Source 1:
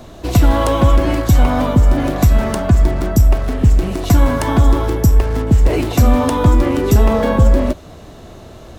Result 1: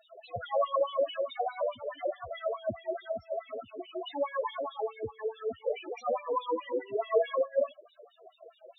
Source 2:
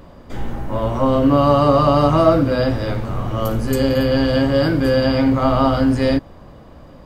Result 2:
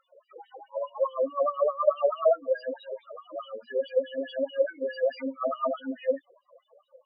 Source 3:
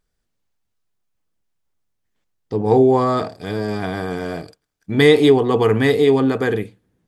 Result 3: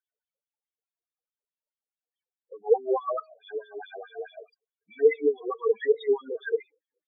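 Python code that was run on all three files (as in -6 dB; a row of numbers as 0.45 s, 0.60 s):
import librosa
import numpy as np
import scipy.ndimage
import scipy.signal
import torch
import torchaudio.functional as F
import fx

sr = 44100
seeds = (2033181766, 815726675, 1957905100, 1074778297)

y = fx.highpass(x, sr, hz=54.0, slope=6)
y = fx.low_shelf(y, sr, hz=83.0, db=-11.5)
y = fx.wah_lfo(y, sr, hz=4.7, low_hz=460.0, high_hz=3600.0, q=3.7)
y = fx.spec_topn(y, sr, count=4)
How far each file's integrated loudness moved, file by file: -19.0 LU, -12.0 LU, -9.5 LU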